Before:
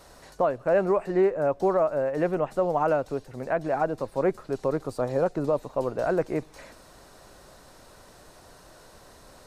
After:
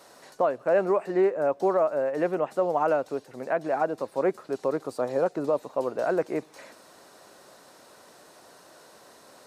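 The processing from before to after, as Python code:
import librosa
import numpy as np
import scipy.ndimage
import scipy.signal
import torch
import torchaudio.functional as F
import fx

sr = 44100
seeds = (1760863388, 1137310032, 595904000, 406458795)

y = scipy.signal.sosfilt(scipy.signal.butter(2, 230.0, 'highpass', fs=sr, output='sos'), x)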